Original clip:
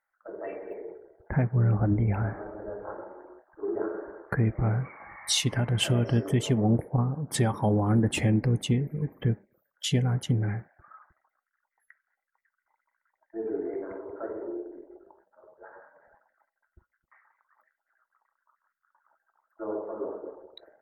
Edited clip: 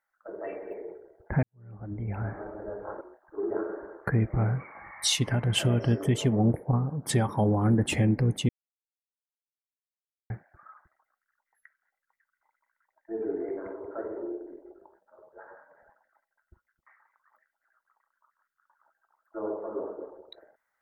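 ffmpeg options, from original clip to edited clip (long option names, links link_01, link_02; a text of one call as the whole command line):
ffmpeg -i in.wav -filter_complex "[0:a]asplit=5[link_01][link_02][link_03][link_04][link_05];[link_01]atrim=end=1.43,asetpts=PTS-STARTPTS,afade=type=out:start_time=1.426:duration=0.004:curve=hsin[link_06];[link_02]atrim=start=1.43:end=3.012,asetpts=PTS-STARTPTS,afade=type=in:duration=1:curve=qua[link_07];[link_03]atrim=start=3.258:end=8.74,asetpts=PTS-STARTPTS,afade=type=out:start_time=5.478:duration=0.004:curve=hsin[link_08];[link_04]atrim=start=8.74:end=10.55,asetpts=PTS-STARTPTS,volume=0[link_09];[link_05]atrim=start=10.55,asetpts=PTS-STARTPTS,afade=type=in:duration=0.004:curve=hsin[link_10];[link_06][link_07]concat=n=2:v=0:a=1[link_11];[link_08][link_09][link_10]concat=n=3:v=0:a=1[link_12];[link_11][link_12]acrossfade=duration=0.004:curve1=hsin:curve2=hsin" out.wav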